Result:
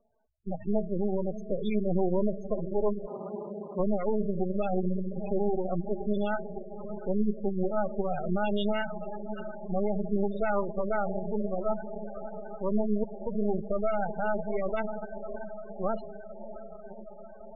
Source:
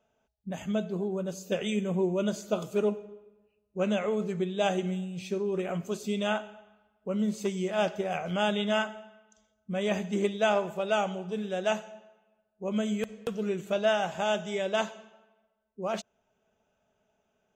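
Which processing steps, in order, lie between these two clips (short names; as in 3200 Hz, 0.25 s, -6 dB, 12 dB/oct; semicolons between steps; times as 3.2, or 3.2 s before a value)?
11.11–11.77 Gaussian blur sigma 8.2 samples; diffused feedback echo 0.632 s, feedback 70%, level -11.5 dB; limiter -21 dBFS, peak gain reduction 7.5 dB; half-wave rectifier; 3.06–3.79 HPF 170 Hz -> 67 Hz; spectral gate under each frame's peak -15 dB strong; gain +6.5 dB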